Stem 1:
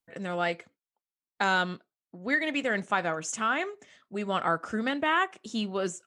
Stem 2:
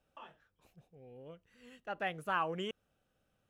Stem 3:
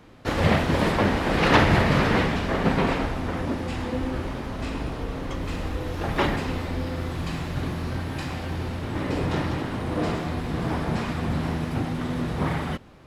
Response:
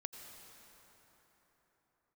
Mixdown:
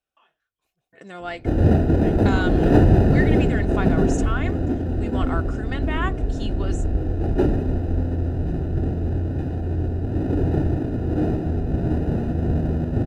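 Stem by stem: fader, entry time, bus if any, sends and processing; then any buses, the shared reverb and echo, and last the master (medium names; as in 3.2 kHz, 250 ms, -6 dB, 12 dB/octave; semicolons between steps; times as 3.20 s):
-3.5 dB, 0.85 s, no send, none
-10.5 dB, 0.00 s, no send, tilt shelf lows -5 dB, about 850 Hz
+1.5 dB, 1.20 s, no send, square wave that keeps the level; boxcar filter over 40 samples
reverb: none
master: comb 2.8 ms, depth 34%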